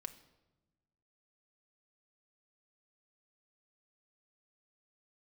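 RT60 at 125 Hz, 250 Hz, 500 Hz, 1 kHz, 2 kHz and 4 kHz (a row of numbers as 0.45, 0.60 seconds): 1.7, 1.6, 1.2, 1.0, 0.80, 0.75 seconds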